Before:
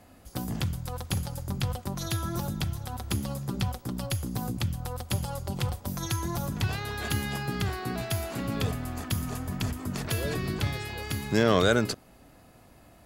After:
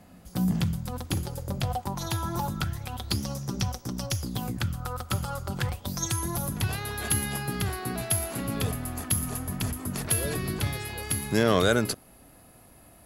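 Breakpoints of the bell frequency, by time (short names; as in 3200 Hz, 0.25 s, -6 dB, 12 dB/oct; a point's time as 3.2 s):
bell +15 dB 0.3 oct
0.75 s 180 Hz
1.88 s 900 Hz
2.45 s 900 Hz
3.23 s 5800 Hz
4.19 s 5800 Hz
4.67 s 1300 Hz
5.55 s 1300 Hz
6.19 s 11000 Hz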